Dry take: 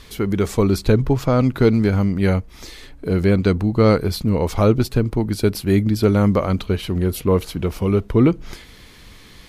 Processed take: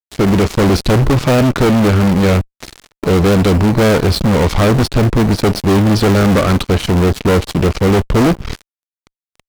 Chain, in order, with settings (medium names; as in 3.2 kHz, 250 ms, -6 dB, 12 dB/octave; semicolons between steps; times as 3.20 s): low-pass 5.8 kHz 24 dB/octave; in parallel at -9.5 dB: decimation with a swept rate 34×, swing 100% 0.5 Hz; on the sum: fuzz box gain 24 dB, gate -31 dBFS; trim +4.5 dB